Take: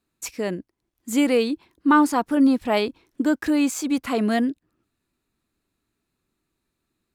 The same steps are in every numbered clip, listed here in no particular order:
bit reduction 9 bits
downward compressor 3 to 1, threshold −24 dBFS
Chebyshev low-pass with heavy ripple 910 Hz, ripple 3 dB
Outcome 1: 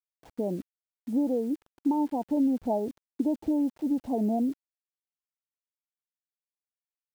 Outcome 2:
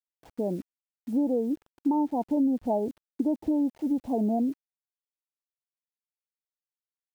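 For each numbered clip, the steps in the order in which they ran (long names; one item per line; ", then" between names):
downward compressor, then Chebyshev low-pass with heavy ripple, then bit reduction
Chebyshev low-pass with heavy ripple, then bit reduction, then downward compressor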